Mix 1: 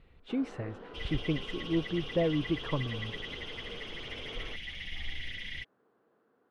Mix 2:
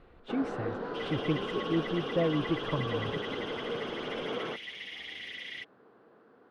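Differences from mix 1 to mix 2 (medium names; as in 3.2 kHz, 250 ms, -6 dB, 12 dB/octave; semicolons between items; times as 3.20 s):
first sound +11.5 dB; second sound: add high-pass 280 Hz 12 dB/octave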